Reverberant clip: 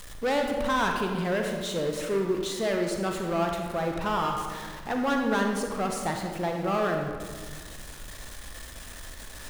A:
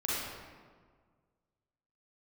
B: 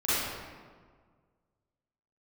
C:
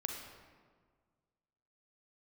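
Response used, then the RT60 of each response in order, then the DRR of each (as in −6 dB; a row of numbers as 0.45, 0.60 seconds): C; 1.7, 1.7, 1.7 seconds; −7.5, −13.5, 2.0 decibels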